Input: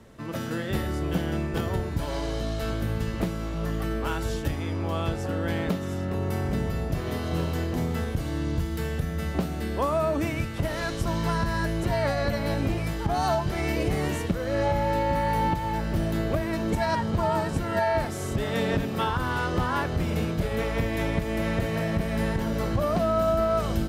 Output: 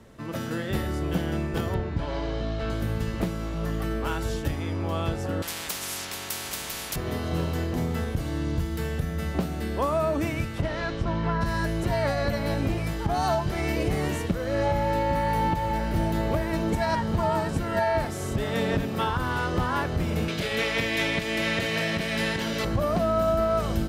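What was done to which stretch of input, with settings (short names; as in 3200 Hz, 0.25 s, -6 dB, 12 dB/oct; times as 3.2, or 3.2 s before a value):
1.74–2.7 LPF 3800 Hz
5.42–6.96 spectral compressor 10:1
10.61–11.4 LPF 5100 Hz -> 2300 Hz
14.98–16.1 echo throw 0.58 s, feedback 55%, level -9 dB
20.28–22.65 weighting filter D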